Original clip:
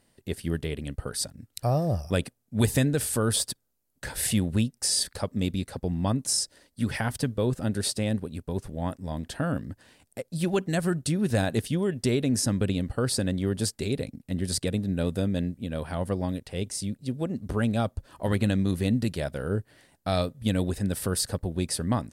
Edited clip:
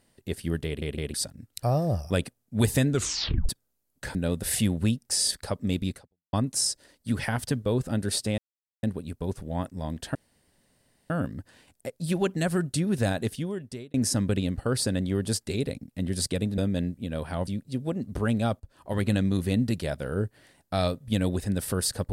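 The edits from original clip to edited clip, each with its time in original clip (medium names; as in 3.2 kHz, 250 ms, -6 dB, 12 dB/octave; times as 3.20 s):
0.66 s: stutter in place 0.16 s, 3 plays
2.90 s: tape stop 0.59 s
5.68–6.05 s: fade out exponential
8.10 s: insert silence 0.45 s
9.42 s: insert room tone 0.95 s
11.00–12.26 s: fade out equal-power
14.90–15.18 s: move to 4.15 s
16.07–16.81 s: delete
17.94–18.44 s: fade in, from -13.5 dB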